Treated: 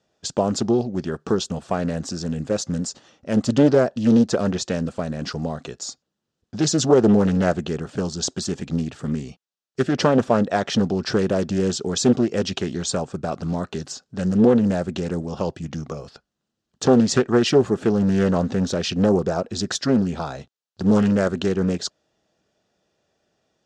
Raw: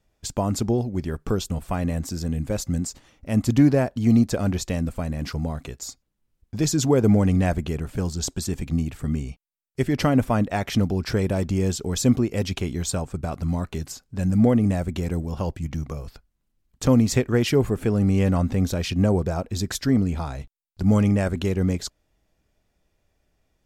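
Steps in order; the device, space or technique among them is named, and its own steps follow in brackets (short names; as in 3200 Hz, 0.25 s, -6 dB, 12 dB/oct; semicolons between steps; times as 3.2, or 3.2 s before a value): full-range speaker at full volume (Doppler distortion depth 0.56 ms; speaker cabinet 200–6900 Hz, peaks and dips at 280 Hz -5 dB, 980 Hz -4 dB, 2200 Hz -10 dB); gain +6 dB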